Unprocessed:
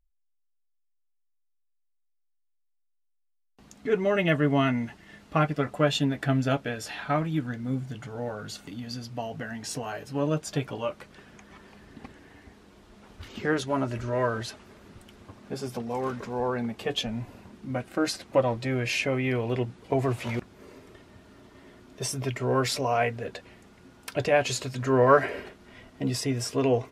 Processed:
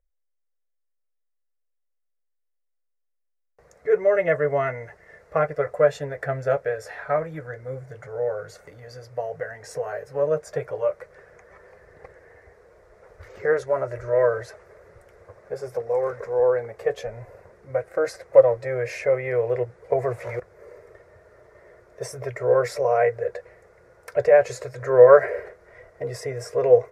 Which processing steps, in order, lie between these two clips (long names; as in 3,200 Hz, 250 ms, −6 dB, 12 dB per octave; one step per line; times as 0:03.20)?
drawn EQ curve 100 Hz 0 dB, 170 Hz −6 dB, 240 Hz −23 dB, 500 Hz +15 dB, 840 Hz 0 dB, 2,000 Hz +5 dB, 3,000 Hz −17 dB, 5,500 Hz −5 dB
level −2 dB